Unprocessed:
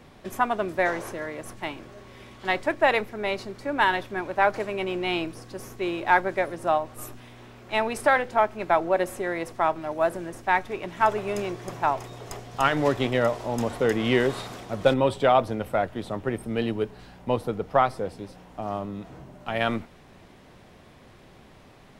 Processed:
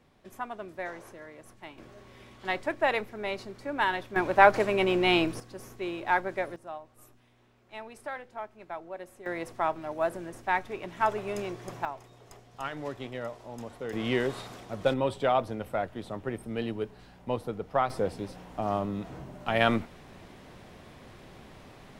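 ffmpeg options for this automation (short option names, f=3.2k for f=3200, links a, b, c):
-af "asetnsamples=n=441:p=0,asendcmd='1.78 volume volume -5.5dB;4.16 volume volume 3.5dB;5.4 volume volume -6dB;6.56 volume volume -17.5dB;9.26 volume volume -5dB;11.85 volume volume -14dB;13.93 volume volume -6dB;17.9 volume volume 1.5dB',volume=-13dB"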